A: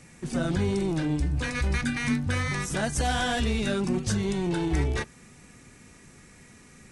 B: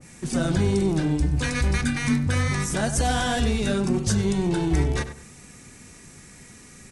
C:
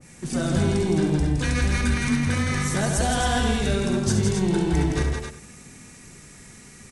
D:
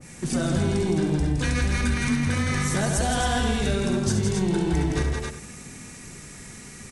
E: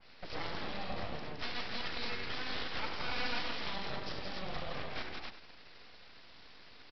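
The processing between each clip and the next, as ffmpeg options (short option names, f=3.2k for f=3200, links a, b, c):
-filter_complex "[0:a]bass=f=250:g=1,treble=f=4k:g=6,asplit=2[a][b];[b]adelay=97,lowpass=f=2.5k:p=1,volume=-10.5dB,asplit=2[c][d];[d]adelay=97,lowpass=f=2.5k:p=1,volume=0.29,asplit=2[e][f];[f]adelay=97,lowpass=f=2.5k:p=1,volume=0.29[g];[c][e][g]amix=inputs=3:normalize=0[h];[a][h]amix=inputs=2:normalize=0,adynamicequalizer=threshold=0.01:dfrequency=1500:dqfactor=0.7:tfrequency=1500:tqfactor=0.7:attack=5:release=100:ratio=0.375:range=2:mode=cutabove:tftype=highshelf,volume=3dB"
-af "aecho=1:1:68|165|267:0.398|0.531|0.473,volume=-1.5dB"
-af "acompressor=threshold=-28dB:ratio=2,volume=4dB"
-af "highpass=f=740:p=1,aresample=11025,aeval=exprs='abs(val(0))':c=same,aresample=44100,volume=-4.5dB"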